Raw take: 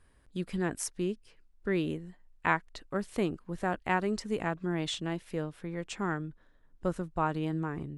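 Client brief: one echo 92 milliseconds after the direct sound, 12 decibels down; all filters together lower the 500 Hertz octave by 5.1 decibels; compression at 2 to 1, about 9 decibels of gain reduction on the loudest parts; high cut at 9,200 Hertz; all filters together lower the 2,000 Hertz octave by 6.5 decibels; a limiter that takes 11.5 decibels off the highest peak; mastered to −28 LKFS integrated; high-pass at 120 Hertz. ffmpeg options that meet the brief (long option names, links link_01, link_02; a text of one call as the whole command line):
ffmpeg -i in.wav -af "highpass=120,lowpass=9200,equalizer=frequency=500:width_type=o:gain=-7,equalizer=frequency=2000:width_type=o:gain=-8,acompressor=threshold=-44dB:ratio=2,alimiter=level_in=11.5dB:limit=-24dB:level=0:latency=1,volume=-11.5dB,aecho=1:1:92:0.251,volume=18.5dB" out.wav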